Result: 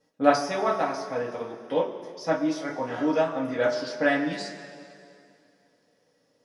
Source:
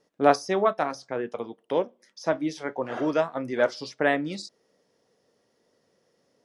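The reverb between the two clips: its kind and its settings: two-slope reverb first 0.22 s, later 2.5 s, from -18 dB, DRR -5.5 dB; trim -6 dB

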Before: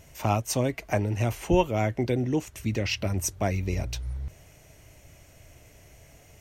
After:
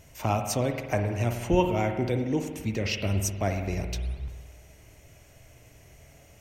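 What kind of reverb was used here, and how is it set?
spring tank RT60 1.4 s, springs 50 ms, chirp 75 ms, DRR 5.5 dB; trim -1.5 dB

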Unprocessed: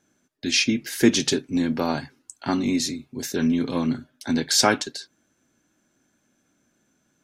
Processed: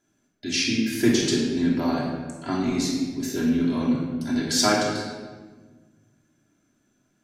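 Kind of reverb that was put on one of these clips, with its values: simulated room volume 1300 m³, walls mixed, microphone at 3 m; trim -7 dB

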